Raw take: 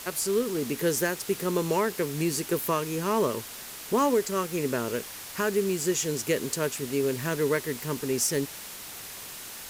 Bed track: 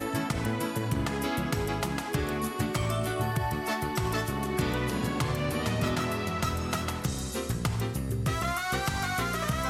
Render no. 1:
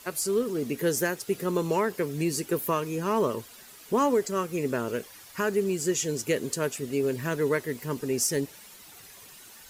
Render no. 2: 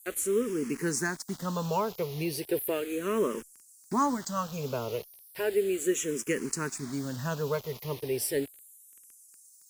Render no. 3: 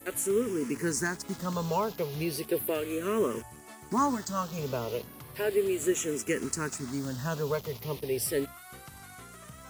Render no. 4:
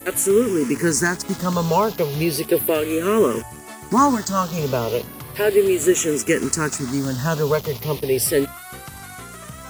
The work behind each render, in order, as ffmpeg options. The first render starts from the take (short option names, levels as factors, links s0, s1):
-af "afftdn=nr=11:nf=-41"
-filter_complex "[0:a]acrossover=split=6600[s0][s1];[s0]acrusher=bits=6:mix=0:aa=0.000001[s2];[s2][s1]amix=inputs=2:normalize=0,asplit=2[s3][s4];[s4]afreqshift=-0.35[s5];[s3][s5]amix=inputs=2:normalize=1"
-filter_complex "[1:a]volume=0.112[s0];[0:a][s0]amix=inputs=2:normalize=0"
-af "volume=3.55"